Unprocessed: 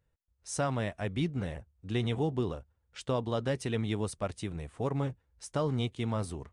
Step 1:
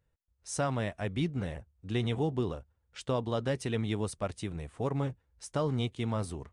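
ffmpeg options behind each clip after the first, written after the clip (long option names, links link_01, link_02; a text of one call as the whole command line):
ffmpeg -i in.wav -af anull out.wav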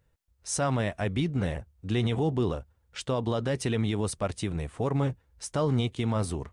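ffmpeg -i in.wav -af "alimiter=level_in=1.5dB:limit=-24dB:level=0:latency=1:release=56,volume=-1.5dB,volume=7dB" out.wav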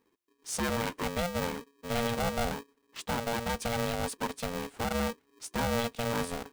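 ffmpeg -i in.wav -af "aeval=exprs='val(0)*sgn(sin(2*PI*350*n/s))':channel_layout=same,volume=-4dB" out.wav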